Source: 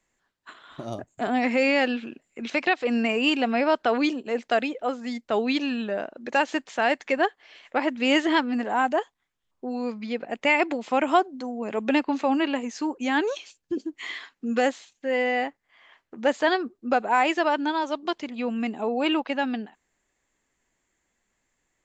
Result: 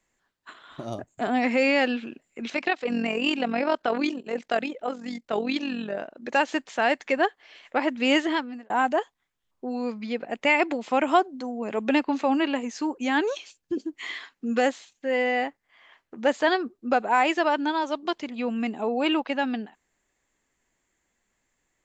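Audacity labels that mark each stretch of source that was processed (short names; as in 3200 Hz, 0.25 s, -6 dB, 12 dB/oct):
2.540000	6.230000	AM modulator 44 Hz, depth 45%
8.130000	8.700000	fade out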